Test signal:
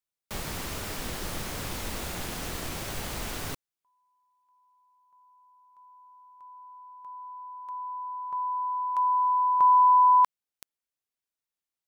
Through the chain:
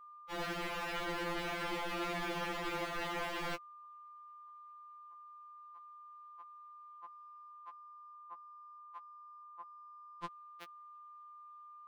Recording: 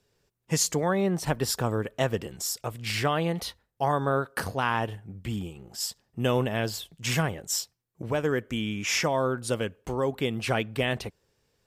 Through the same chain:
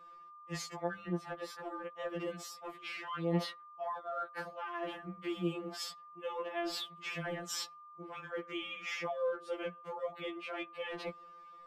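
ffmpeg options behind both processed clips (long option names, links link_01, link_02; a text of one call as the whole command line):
ffmpeg -i in.wav -filter_complex "[0:a]acrossover=split=270 3500:gain=0.224 1 0.1[link_01][link_02][link_03];[link_01][link_02][link_03]amix=inputs=3:normalize=0,areverse,acompressor=threshold=-40dB:ratio=12:attack=0.44:release=354:knee=1:detection=rms,areverse,aeval=exprs='val(0)+0.000355*sin(2*PI*1200*n/s)':channel_layout=same,afftfilt=real='re*2.83*eq(mod(b,8),0)':imag='im*2.83*eq(mod(b,8),0)':win_size=2048:overlap=0.75,volume=11.5dB" out.wav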